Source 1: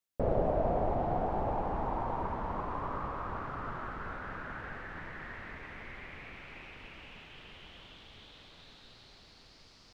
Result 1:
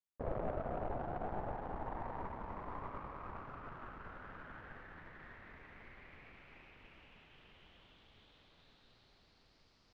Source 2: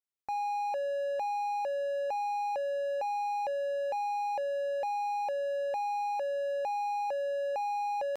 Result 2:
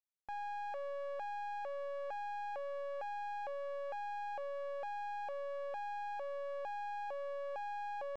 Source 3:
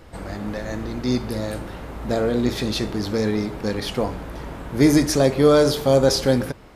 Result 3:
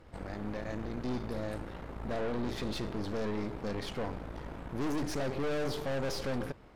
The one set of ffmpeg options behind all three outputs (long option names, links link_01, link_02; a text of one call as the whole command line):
ffmpeg -i in.wav -af "aeval=exprs='(tanh(22.4*val(0)+0.8)-tanh(0.8))/22.4':channel_layout=same,aemphasis=mode=reproduction:type=cd,volume=-5dB" out.wav